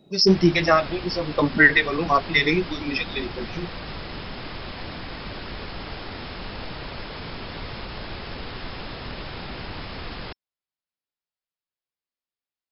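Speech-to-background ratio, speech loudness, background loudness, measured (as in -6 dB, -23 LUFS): 15.0 dB, -20.0 LUFS, -35.0 LUFS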